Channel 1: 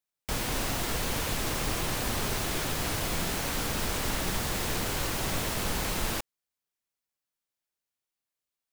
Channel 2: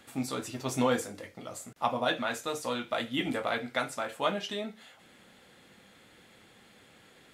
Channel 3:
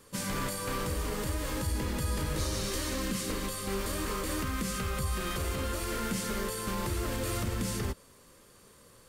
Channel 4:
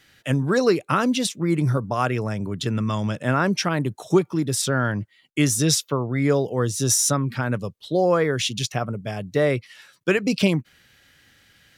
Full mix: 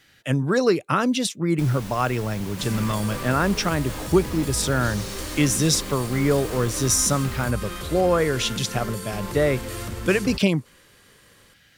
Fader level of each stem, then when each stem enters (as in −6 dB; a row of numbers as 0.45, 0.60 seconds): −8.5 dB, muted, +0.5 dB, −0.5 dB; 1.30 s, muted, 2.45 s, 0.00 s